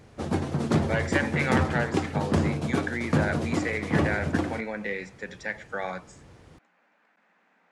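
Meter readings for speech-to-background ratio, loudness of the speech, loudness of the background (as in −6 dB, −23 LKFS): −4.0 dB, −31.5 LKFS, −27.5 LKFS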